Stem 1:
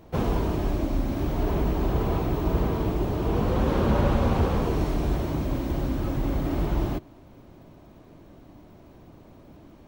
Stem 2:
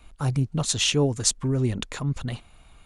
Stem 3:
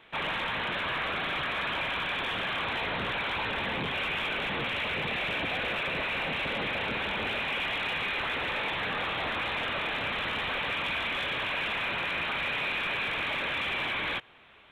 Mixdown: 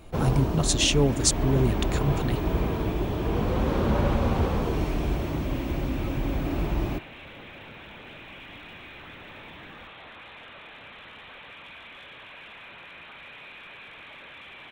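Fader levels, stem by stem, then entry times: −1.5, 0.0, −14.0 decibels; 0.00, 0.00, 0.80 seconds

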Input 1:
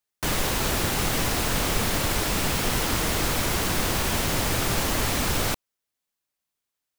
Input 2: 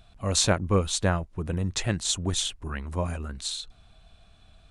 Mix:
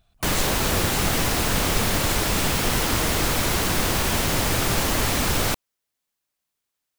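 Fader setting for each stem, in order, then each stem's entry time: +2.5, −9.5 decibels; 0.00, 0.00 seconds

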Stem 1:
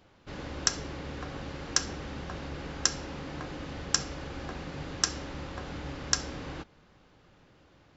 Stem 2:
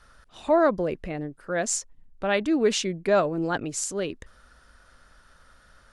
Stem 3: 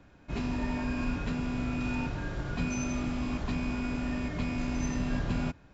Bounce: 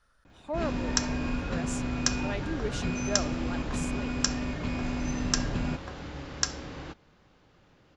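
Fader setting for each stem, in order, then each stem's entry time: −1.0, −13.0, 0.0 decibels; 0.30, 0.00, 0.25 seconds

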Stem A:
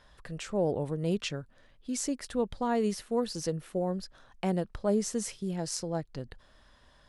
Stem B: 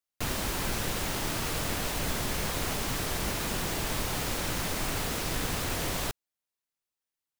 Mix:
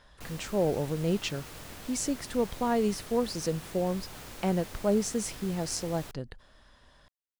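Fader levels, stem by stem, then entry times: +1.5, −13.5 decibels; 0.00, 0.00 seconds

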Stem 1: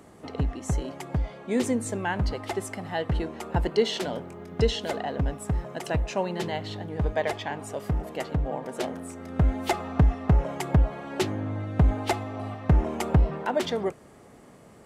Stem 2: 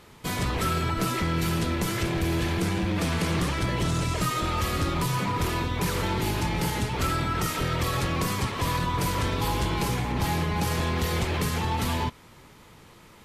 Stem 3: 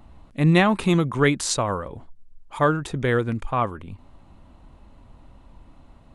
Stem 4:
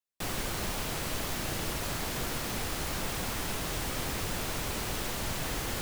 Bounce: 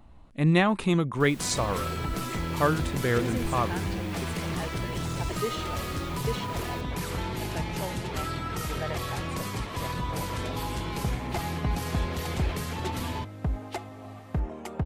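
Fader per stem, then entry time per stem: −9.0, −6.0, −4.5, −14.0 decibels; 1.65, 1.15, 0.00, 1.00 seconds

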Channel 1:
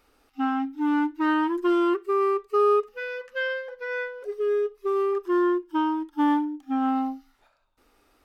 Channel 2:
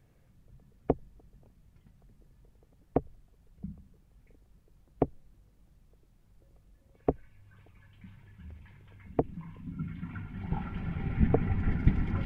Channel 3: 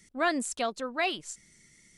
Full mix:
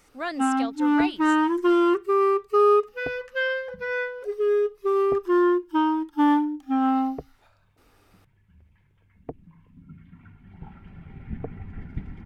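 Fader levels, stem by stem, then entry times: +2.5, −9.0, −4.0 decibels; 0.00, 0.10, 0.00 seconds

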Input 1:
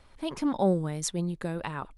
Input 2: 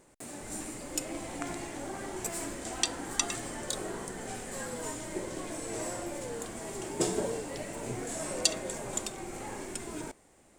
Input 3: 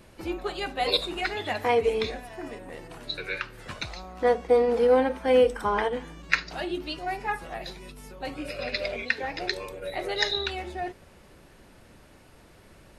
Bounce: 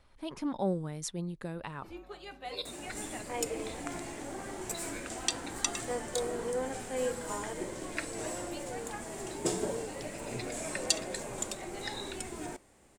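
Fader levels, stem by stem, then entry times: −6.5, −2.0, −14.5 decibels; 0.00, 2.45, 1.65 seconds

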